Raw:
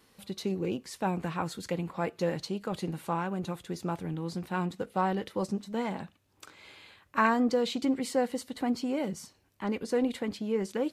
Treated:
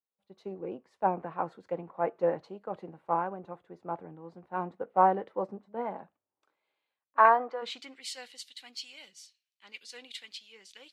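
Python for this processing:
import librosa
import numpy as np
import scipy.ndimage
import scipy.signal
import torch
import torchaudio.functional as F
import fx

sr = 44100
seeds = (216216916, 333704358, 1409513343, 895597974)

y = fx.bandpass_edges(x, sr, low_hz=540.0, high_hz=4600.0, at=(7.17, 7.61), fade=0.02)
y = fx.filter_sweep_bandpass(y, sr, from_hz=700.0, to_hz=3100.0, start_s=7.32, end_s=8.14, q=1.2)
y = fx.band_widen(y, sr, depth_pct=100)
y = y * librosa.db_to_amplitude(1.5)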